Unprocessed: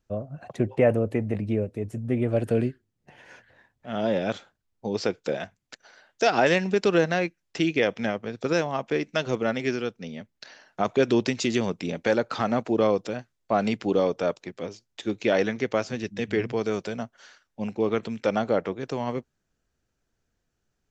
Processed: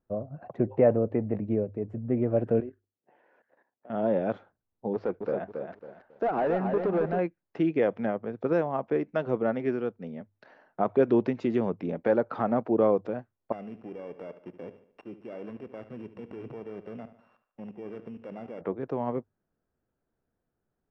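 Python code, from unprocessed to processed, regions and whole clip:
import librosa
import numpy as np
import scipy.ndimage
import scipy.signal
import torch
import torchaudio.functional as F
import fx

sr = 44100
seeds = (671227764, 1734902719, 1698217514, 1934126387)

y = fx.chain(x, sr, fx.cheby1_highpass(hz=350.0, order=2),
    fx.level_steps(step_db=12), at=(2.6, 3.9))
y = fx.chain(y, sr, fx.lowpass(hz=2500.0, slope=6),
    fx.clip_hard(threshold_db=-22.0),
    fx.echo_crushed(ms=274, feedback_pct=35, bits=9, wet_db=-5.5), at=(4.93, 7.19))
y = fx.chain(y, sr, fx.sample_sort(block=16),
    fx.level_steps(step_db=19),
    fx.echo_feedback(ms=73, feedback_pct=46, wet_db=-13), at=(13.52, 18.61))
y = scipy.signal.sosfilt(scipy.signal.butter(2, 1100.0, 'lowpass', fs=sr, output='sos'), y)
y = fx.low_shelf(y, sr, hz=100.0, db=-9.0)
y = fx.hum_notches(y, sr, base_hz=50, count=2)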